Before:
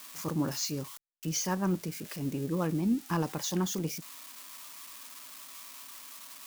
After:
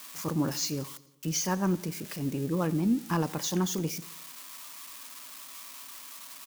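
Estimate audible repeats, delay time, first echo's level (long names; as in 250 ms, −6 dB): 4, 88 ms, −20.5 dB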